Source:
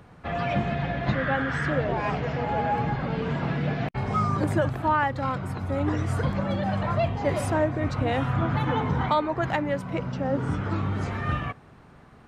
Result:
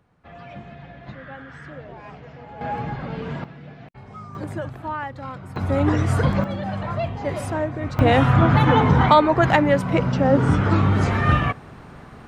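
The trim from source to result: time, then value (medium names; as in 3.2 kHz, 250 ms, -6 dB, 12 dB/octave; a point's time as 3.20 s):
-13 dB
from 2.61 s -2 dB
from 3.44 s -14 dB
from 4.35 s -6 dB
from 5.56 s +6.5 dB
from 6.44 s -1 dB
from 7.99 s +9.5 dB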